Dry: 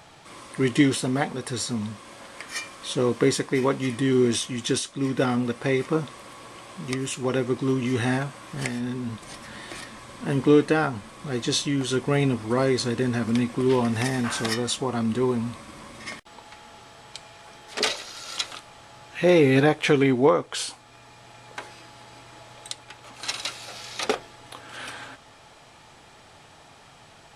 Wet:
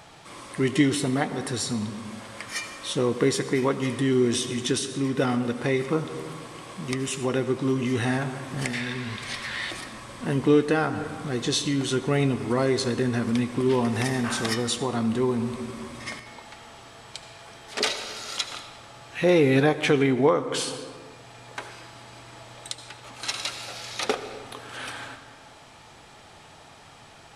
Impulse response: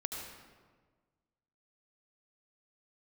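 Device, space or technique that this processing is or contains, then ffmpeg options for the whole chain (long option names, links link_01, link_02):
ducked reverb: -filter_complex "[0:a]asplit=3[link_01][link_02][link_03];[1:a]atrim=start_sample=2205[link_04];[link_02][link_04]afir=irnorm=-1:irlink=0[link_05];[link_03]apad=whole_len=1206158[link_06];[link_05][link_06]sidechaincompress=threshold=-28dB:ratio=3:attack=16:release=260,volume=-3dB[link_07];[link_01][link_07]amix=inputs=2:normalize=0,asettb=1/sr,asplit=3[link_08][link_09][link_10];[link_08]atrim=end=8.734[link_11];[link_09]atrim=start=8.73:end=9.71,asetpts=PTS-STARTPTS,afade=type=in:duration=0.004:curve=qsin,afade=type=out:start_time=0.976:duration=0.004:curve=qsin,equalizer=frequency=250:width_type=o:width=1:gain=-6,equalizer=frequency=2000:width_type=o:width=1:gain=10,equalizer=frequency=4000:width_type=o:width=1:gain=8[link_12];[link_10]atrim=start=9.706[link_13];[link_11][link_12]acrossfade=duration=0.004:curve1=hsin:curve2=qsin[link_14];[link_14][link_13]acrossfade=duration=0.004:curve1=qsin:curve2=hsin,volume=-3dB"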